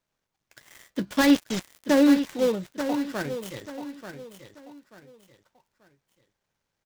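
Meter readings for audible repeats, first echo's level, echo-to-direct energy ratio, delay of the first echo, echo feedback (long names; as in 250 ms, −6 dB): 3, −10.0 dB, −9.5 dB, 886 ms, 31%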